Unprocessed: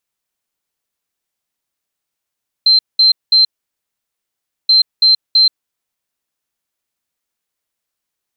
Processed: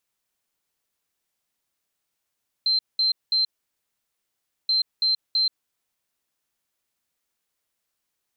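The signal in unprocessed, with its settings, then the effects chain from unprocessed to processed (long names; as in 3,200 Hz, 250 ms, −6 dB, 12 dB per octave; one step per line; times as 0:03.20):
beeps in groups sine 4,120 Hz, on 0.13 s, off 0.20 s, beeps 3, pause 1.24 s, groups 2, −6 dBFS
brickwall limiter −18 dBFS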